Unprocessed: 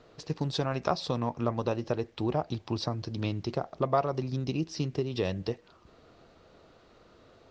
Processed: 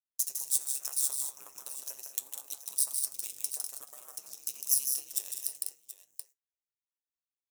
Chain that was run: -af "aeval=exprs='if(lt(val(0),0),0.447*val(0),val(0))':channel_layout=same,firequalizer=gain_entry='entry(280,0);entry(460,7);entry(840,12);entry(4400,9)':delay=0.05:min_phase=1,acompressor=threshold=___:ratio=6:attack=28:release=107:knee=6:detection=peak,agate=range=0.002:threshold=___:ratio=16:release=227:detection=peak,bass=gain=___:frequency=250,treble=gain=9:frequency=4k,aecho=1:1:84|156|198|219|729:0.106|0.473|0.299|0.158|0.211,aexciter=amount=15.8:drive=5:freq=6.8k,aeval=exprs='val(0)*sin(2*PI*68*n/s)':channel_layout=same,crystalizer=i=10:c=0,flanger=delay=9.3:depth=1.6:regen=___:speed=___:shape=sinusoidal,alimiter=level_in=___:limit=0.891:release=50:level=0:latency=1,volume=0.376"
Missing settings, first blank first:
0.0126, 0.00708, -12, 71, 0.81, 0.251